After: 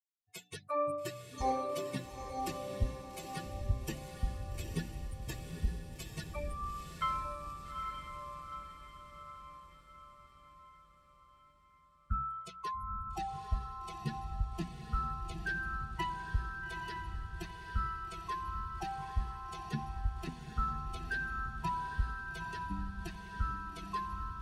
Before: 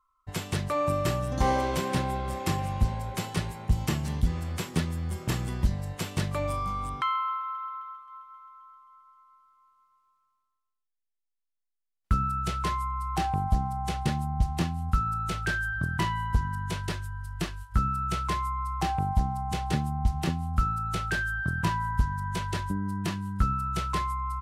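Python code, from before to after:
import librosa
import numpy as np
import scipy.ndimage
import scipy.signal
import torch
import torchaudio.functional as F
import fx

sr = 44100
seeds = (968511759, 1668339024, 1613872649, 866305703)

y = fx.bin_expand(x, sr, power=3.0)
y = fx.hum_notches(y, sr, base_hz=60, count=5)
y = fx.echo_diffused(y, sr, ms=863, feedback_pct=54, wet_db=-4.5)
y = y * librosa.db_to_amplitude(-3.5)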